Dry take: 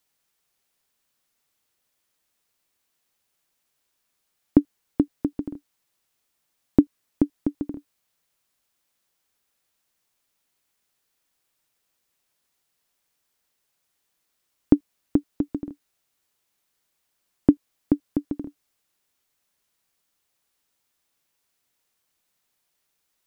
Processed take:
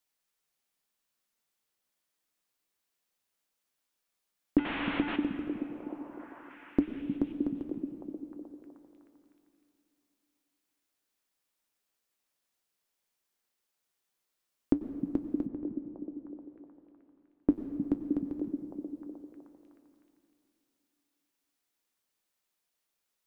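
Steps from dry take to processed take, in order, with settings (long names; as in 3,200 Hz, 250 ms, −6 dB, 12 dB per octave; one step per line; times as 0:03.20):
0:04.58–0:05.16: linear delta modulator 16 kbit/s, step −21 dBFS
parametric band 110 Hz −6.5 dB 1.5 octaves
echo through a band-pass that steps 309 ms, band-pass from 170 Hz, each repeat 0.7 octaves, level −2 dB
on a send at −9 dB: convolution reverb RT60 2.8 s, pre-delay 88 ms
on the sum: flanger 0.14 Hz, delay 8 ms, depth 2.4 ms, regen −71%
0:15.46–0:17.49: high-frequency loss of the air 460 metres
level −3.5 dB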